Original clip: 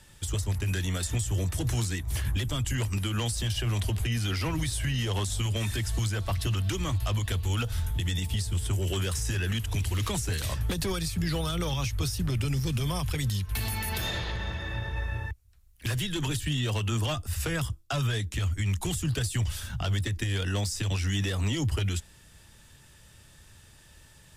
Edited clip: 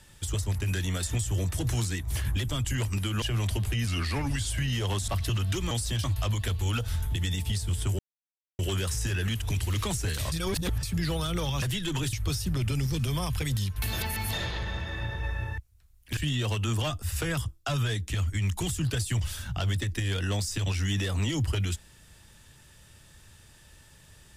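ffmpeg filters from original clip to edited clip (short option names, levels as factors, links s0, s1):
-filter_complex "[0:a]asplit=15[s0][s1][s2][s3][s4][s5][s6][s7][s8][s9][s10][s11][s12][s13][s14];[s0]atrim=end=3.222[s15];[s1]atrim=start=3.548:end=4.204[s16];[s2]atrim=start=4.2:end=4.76,asetpts=PTS-STARTPTS,asetrate=39249,aresample=44100,atrim=end_sample=27748,asetpts=PTS-STARTPTS[s17];[s3]atrim=start=4.756:end=5.342[s18];[s4]atrim=start=6.248:end=6.882[s19];[s5]atrim=start=3.218:end=3.552[s20];[s6]atrim=start=6.878:end=8.83,asetpts=PTS-STARTPTS,afade=t=out:st=1.948:d=0.004:c=hsin,apad=pad_dur=0.6[s21];[s7]atrim=start=8.83:end=10.562,asetpts=PTS-STARTPTS,afade=t=in:d=0.004:c=hsin[s22];[s8]atrim=start=10.558:end=11.072,asetpts=PTS-STARTPTS,areverse[s23];[s9]atrim=start=11.068:end=11.862[s24];[s10]atrim=start=15.898:end=16.412[s25];[s11]atrim=start=11.858:end=13.662[s26];[s12]atrim=start=13.658:end=14.062,asetpts=PTS-STARTPTS,areverse[s27];[s13]atrim=start=14.058:end=15.902[s28];[s14]atrim=start=16.408[s29];[s15][s16]acrossfade=d=0.004:c1=hsin:c2=hsin[s30];[s30][s17]acrossfade=d=0.004:c1=hsin:c2=hsin[s31];[s31][s18]acrossfade=d=0.004:c1=hsin:c2=hsin[s32];[s32][s19]acrossfade=d=0.004:c1=hsin:c2=hsin[s33];[s33][s20]acrossfade=d=0.004:c1=hsin:c2=hsin[s34];[s21][s22]concat=n=2:v=0:a=1[s35];[s34][s35]acrossfade=d=0.004:c1=hsin:c2=hsin[s36];[s36][s23]acrossfade=d=0.004:c1=hsin:c2=hsin[s37];[s37][s24]acrossfade=d=0.004:c1=hsin:c2=hsin[s38];[s38][s25]acrossfade=d=0.004:c1=hsin:c2=hsin[s39];[s39][s26]acrossfade=d=0.004:c1=hsin:c2=hsin[s40];[s40][s27]acrossfade=d=0.004:c1=hsin:c2=hsin[s41];[s41][s28]acrossfade=d=0.004:c1=hsin:c2=hsin[s42];[s42][s29]acrossfade=d=0.004:c1=hsin:c2=hsin"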